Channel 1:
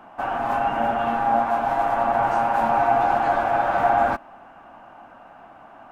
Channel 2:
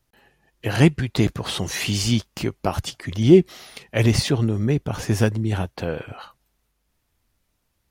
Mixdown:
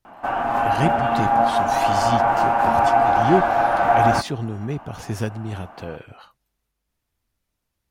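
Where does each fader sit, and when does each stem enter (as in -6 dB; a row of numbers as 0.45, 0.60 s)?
+2.5, -6.5 dB; 0.05, 0.00 s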